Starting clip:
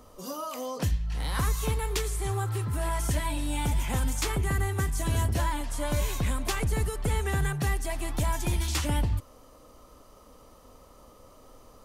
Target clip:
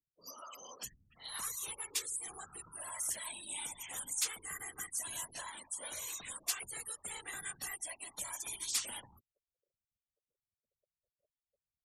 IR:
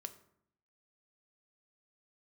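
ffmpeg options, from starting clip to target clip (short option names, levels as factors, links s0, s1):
-af "afftfilt=real='re*gte(hypot(re,im),0.0158)':imag='im*gte(hypot(re,im),0.0158)':win_size=1024:overlap=0.75,aderivative,afftfilt=real='hypot(re,im)*cos(2*PI*random(0))':imag='hypot(re,im)*sin(2*PI*random(1))':win_size=512:overlap=0.75,volume=2.37"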